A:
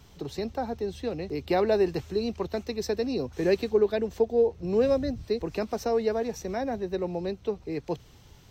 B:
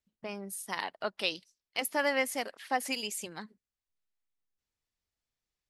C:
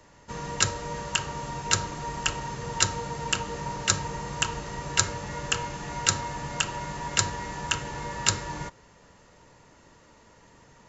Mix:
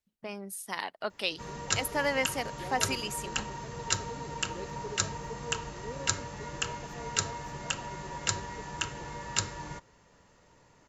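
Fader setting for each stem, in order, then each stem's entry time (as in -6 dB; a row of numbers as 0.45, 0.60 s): -20.0, 0.0, -6.0 dB; 1.10, 0.00, 1.10 s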